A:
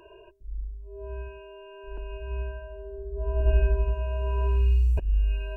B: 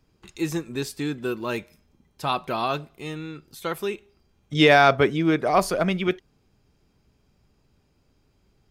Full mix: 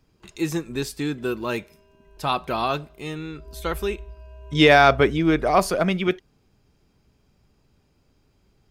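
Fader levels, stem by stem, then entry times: −14.5, +1.5 decibels; 0.20, 0.00 seconds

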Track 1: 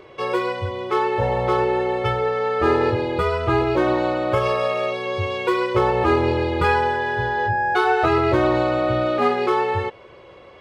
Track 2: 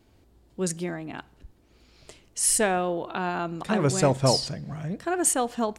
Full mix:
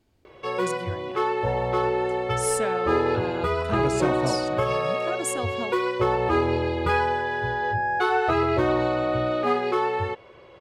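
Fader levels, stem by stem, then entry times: −4.0, −7.0 decibels; 0.25, 0.00 seconds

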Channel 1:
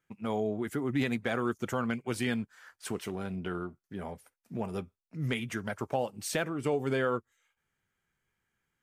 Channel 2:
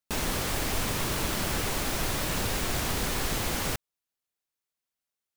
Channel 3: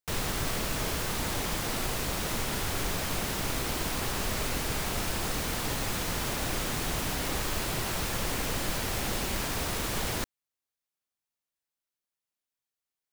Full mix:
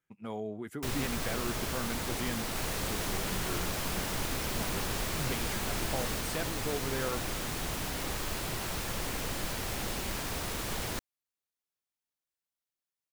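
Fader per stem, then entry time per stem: −6.5, −9.5, −4.0 decibels; 0.00, 2.45, 0.75 seconds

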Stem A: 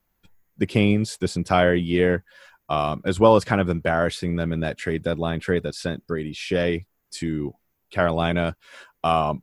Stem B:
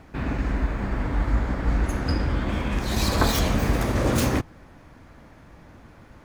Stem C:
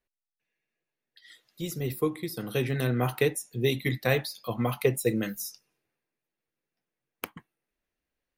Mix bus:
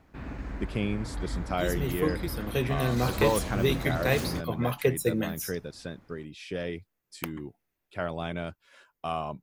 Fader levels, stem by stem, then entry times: −11.5, −11.5, −0.5 decibels; 0.00, 0.00, 0.00 seconds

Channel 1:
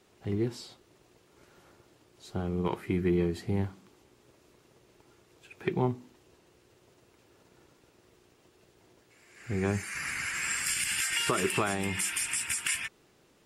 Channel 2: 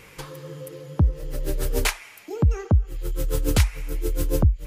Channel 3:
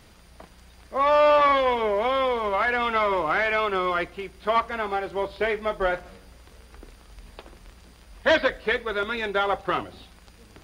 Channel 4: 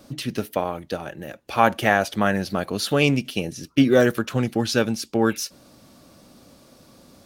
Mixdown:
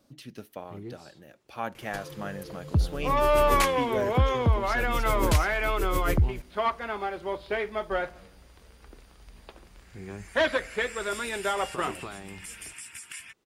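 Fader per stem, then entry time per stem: −11.0, −4.5, −4.5, −16.0 decibels; 0.45, 1.75, 2.10, 0.00 seconds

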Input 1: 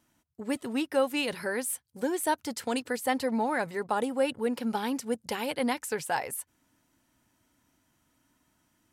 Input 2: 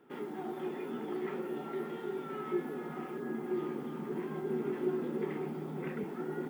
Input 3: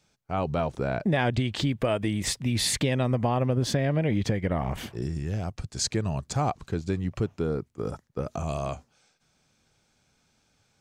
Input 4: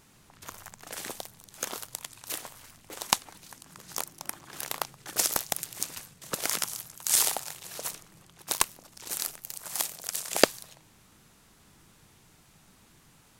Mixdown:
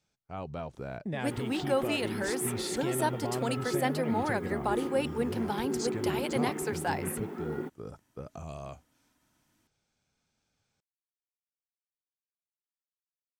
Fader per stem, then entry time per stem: −2.5 dB, +1.0 dB, −11.0 dB, muted; 0.75 s, 1.20 s, 0.00 s, muted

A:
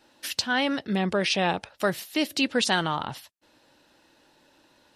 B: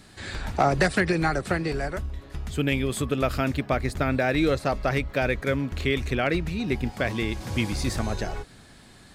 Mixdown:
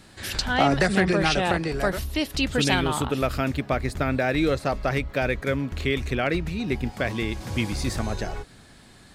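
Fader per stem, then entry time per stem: −0.5, 0.0 decibels; 0.00, 0.00 seconds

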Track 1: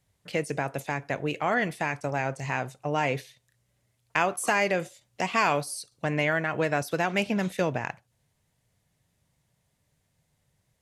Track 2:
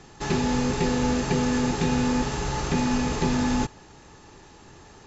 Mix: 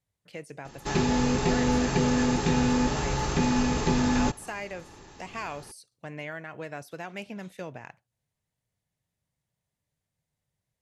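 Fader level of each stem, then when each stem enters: −12.0, −0.5 decibels; 0.00, 0.65 seconds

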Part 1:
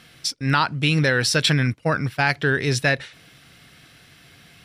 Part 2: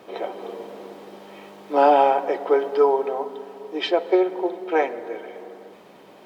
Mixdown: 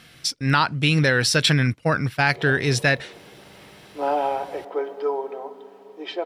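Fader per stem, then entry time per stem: +0.5, −7.5 decibels; 0.00, 2.25 seconds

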